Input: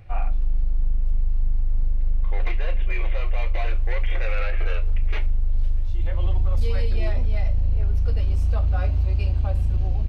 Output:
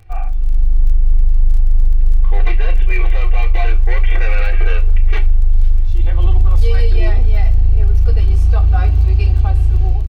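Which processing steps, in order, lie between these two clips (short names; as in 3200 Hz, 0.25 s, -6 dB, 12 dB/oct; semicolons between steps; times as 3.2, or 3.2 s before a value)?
comb 2.6 ms, depth 86%; AGC; crackle 20/s -27 dBFS; gain -2 dB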